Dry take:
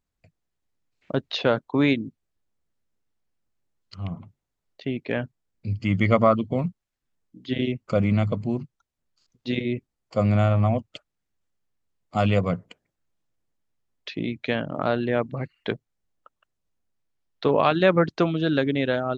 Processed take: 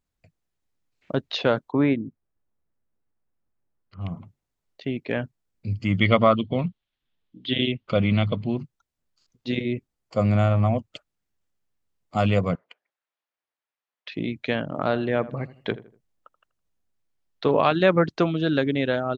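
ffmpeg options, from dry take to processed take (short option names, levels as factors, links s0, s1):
-filter_complex "[0:a]asettb=1/sr,asplit=3[s0][s1][s2];[s0]atrim=end=1.724[s3];[s1]atrim=start=1.72:end=4.01,asetpts=PTS-STARTPTS,afade=t=in:d=0.004:c=qsin,afade=t=out:st=2.286:d=0.004:c=qsin,lowpass=1700[s4];[s2]atrim=start=4.006[s5];[s3][s4]acrossfade=d=0.004:c1=hsin:c2=qsin[s6];[s6][s5]acrossfade=d=0.004:c1=qsin:c2=hsin,asettb=1/sr,asplit=3[s7][s8][s9];[s7]atrim=end=5.984[s10];[s8]atrim=start=5.98:end=8.59,asetpts=PTS-STARTPTS,afade=t=in:d=0.004:c=qsin,afade=t=out:st=2.606:d=0.004:c=qsin,lowpass=f=3400:t=q:w=3.7[s11];[s9]atrim=start=8.586[s12];[s10][s11]acrossfade=d=0.004:c1=hsin:c2=qsin[s13];[s13][s12]acrossfade=d=0.004:c1=qsin:c2=hsin,asettb=1/sr,asplit=3[s14][s15][s16];[s14]atrim=end=12.554[s17];[s15]atrim=start=12.55:end=14.12,asetpts=PTS-STARTPTS,afade=t=in:d=0.004:c=qsin,afade=t=out:st=1.566:d=0.004:c=qsin,highpass=800,lowpass=3500[s18];[s16]atrim=start=14.116[s19];[s17][s18]acrossfade=d=0.004:c1=hsin:c2=qsin[s20];[s20][s19]acrossfade=d=0.004:c1=qsin:c2=hsin,asplit=3[s21][s22][s23];[s21]afade=t=out:st=14.91:d=0.02[s24];[s22]asplit=2[s25][s26];[s26]adelay=81,lowpass=f=1600:p=1,volume=0.158,asplit=2[s27][s28];[s28]adelay=81,lowpass=f=1600:p=1,volume=0.36,asplit=2[s29][s30];[s30]adelay=81,lowpass=f=1600:p=1,volume=0.36[s31];[s25][s27][s29][s31]amix=inputs=4:normalize=0,afade=t=in:st=14.91:d=0.02,afade=t=out:st=17.59:d=0.02[s32];[s23]afade=t=in:st=17.59:d=0.02[s33];[s24][s32][s33]amix=inputs=3:normalize=0"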